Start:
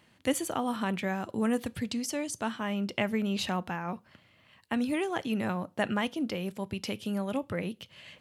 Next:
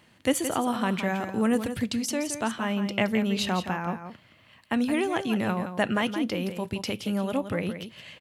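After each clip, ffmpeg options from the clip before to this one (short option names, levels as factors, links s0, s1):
-af "aecho=1:1:170:0.335,volume=1.58"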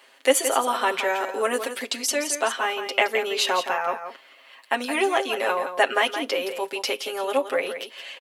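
-af "highpass=f=410:w=0.5412,highpass=f=410:w=1.3066,aecho=1:1:7.4:0.87,volume=1.78"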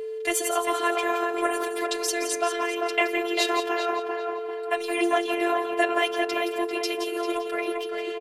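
-filter_complex "[0:a]asplit=2[s0][s1];[s1]adelay=395,lowpass=f=1800:p=1,volume=0.708,asplit=2[s2][s3];[s3]adelay=395,lowpass=f=1800:p=1,volume=0.49,asplit=2[s4][s5];[s5]adelay=395,lowpass=f=1800:p=1,volume=0.49,asplit=2[s6][s7];[s7]adelay=395,lowpass=f=1800:p=1,volume=0.49,asplit=2[s8][s9];[s9]adelay=395,lowpass=f=1800:p=1,volume=0.49,asplit=2[s10][s11];[s11]adelay=395,lowpass=f=1800:p=1,volume=0.49[s12];[s0][s2][s4][s6][s8][s10][s12]amix=inputs=7:normalize=0,afftfilt=real='hypot(re,im)*cos(PI*b)':imag='0':win_size=512:overlap=0.75,aeval=exprs='val(0)+0.0316*sin(2*PI*440*n/s)':c=same"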